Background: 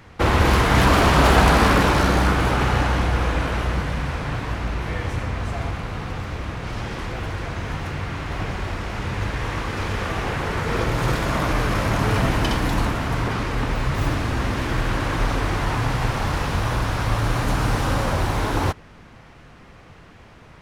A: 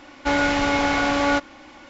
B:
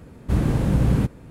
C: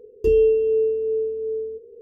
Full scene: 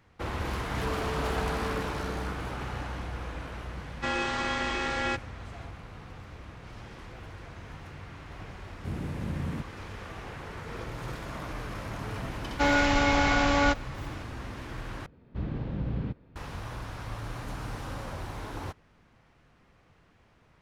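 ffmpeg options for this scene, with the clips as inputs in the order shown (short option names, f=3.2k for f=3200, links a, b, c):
-filter_complex "[1:a]asplit=2[a][b];[2:a]asplit=2[c][d];[0:a]volume=-16dB[e];[3:a]acompressor=threshold=-20dB:ratio=6:attack=3.2:release=140:knee=1:detection=peak[f];[a]aeval=exprs='val(0)*sin(2*PI*1100*n/s)':c=same[g];[c]afreqshift=23[h];[b]asubboost=boost=7:cutoff=160[i];[d]lowpass=f=4.1k:w=0.5412,lowpass=f=4.1k:w=1.3066[j];[e]asplit=2[k][l];[k]atrim=end=15.064[m];[j]atrim=end=1.3,asetpts=PTS-STARTPTS,volume=-13dB[n];[l]atrim=start=16.356[o];[f]atrim=end=2.01,asetpts=PTS-STARTPTS,volume=-16dB,afade=t=in:d=0.004:c=hsin,afade=t=out:st=2.006:d=0.004:c=hsin,adelay=580[p];[g]atrim=end=1.89,asetpts=PTS-STARTPTS,volume=-7dB,afade=t=in:d=0.004:c=hsin,afade=t=out:st=1.886:d=0.004:c=hsin,adelay=166257S[q];[h]atrim=end=1.3,asetpts=PTS-STARTPTS,volume=-15dB,afade=t=in:d=0.004:c=hsin,afade=t=out:st=1.296:d=0.004:c=hsin,adelay=8550[r];[i]atrim=end=1.89,asetpts=PTS-STARTPTS,volume=-3dB,afade=t=in:d=0.004:c=hsin,afade=t=out:st=1.886:d=0.004:c=hsin,adelay=12340[s];[m][n]acrossfade=d=0.004:c1=hsin:c2=hsin[t];[t][o]acrossfade=d=0.004:c1=hsin:c2=hsin[u];[u][p][q][r][s]amix=inputs=5:normalize=0"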